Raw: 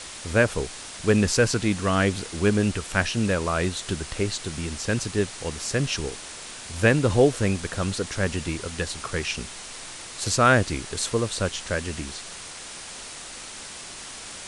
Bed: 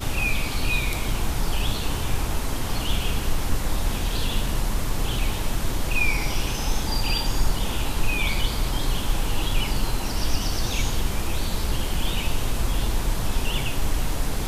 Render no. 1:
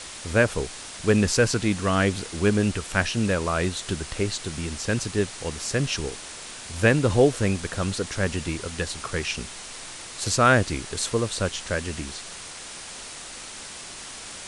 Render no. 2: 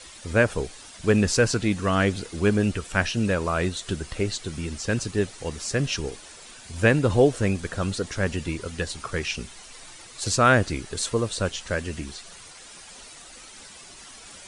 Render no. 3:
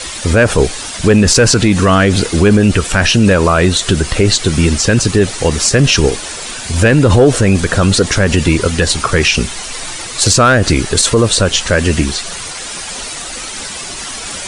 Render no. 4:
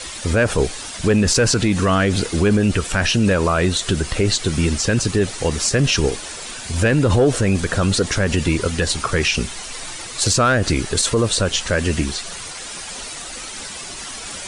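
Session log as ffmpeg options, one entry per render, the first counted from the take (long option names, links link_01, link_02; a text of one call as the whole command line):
ffmpeg -i in.wav -af anull out.wav
ffmpeg -i in.wav -af "afftdn=noise_reduction=10:noise_floor=-39" out.wav
ffmpeg -i in.wav -af "acontrast=87,alimiter=level_in=13dB:limit=-1dB:release=50:level=0:latency=1" out.wav
ffmpeg -i in.wav -af "volume=-7dB" out.wav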